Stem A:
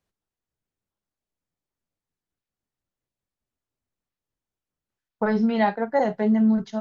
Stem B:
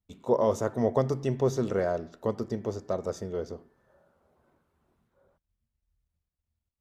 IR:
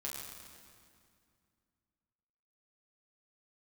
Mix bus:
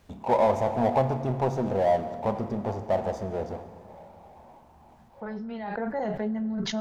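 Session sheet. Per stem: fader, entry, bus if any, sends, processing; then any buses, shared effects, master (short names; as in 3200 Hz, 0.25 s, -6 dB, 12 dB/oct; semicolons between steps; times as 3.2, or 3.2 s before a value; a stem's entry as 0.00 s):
5.62 s -19.5 dB -> 5.83 s -13 dB, 0.00 s, send -14 dB, fast leveller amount 100%
-5.5 dB, 0.00 s, send -6.5 dB, EQ curve 230 Hz 0 dB, 420 Hz -5 dB, 840 Hz +14 dB, 1400 Hz -10 dB; power-law curve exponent 0.7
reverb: on, RT60 2.3 s, pre-delay 7 ms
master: high shelf 5000 Hz -6.5 dB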